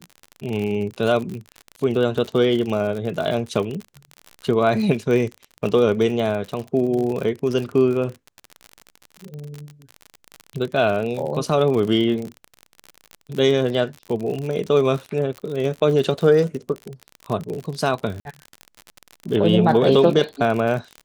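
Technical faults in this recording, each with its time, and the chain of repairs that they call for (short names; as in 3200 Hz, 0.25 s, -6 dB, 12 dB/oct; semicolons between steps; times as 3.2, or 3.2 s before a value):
crackle 49/s -26 dBFS
18.2–18.25 gap 51 ms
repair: de-click; interpolate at 18.2, 51 ms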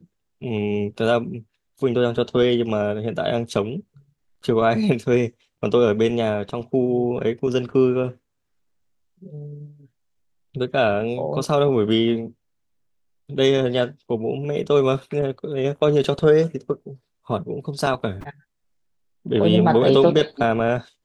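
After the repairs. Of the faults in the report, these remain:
none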